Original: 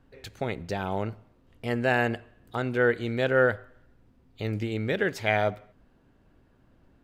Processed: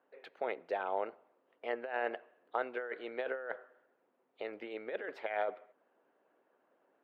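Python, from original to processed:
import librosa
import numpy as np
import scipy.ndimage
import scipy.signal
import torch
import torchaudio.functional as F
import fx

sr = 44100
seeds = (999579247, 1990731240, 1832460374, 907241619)

y = fx.hpss(x, sr, part='percussive', gain_db=6)
y = fx.over_compress(y, sr, threshold_db=-24.0, ratio=-0.5)
y = fx.ladder_highpass(y, sr, hz=390.0, resonance_pct=25)
y = fx.air_absorb(y, sr, metres=490.0)
y = y * librosa.db_to_amplitude(-2.5)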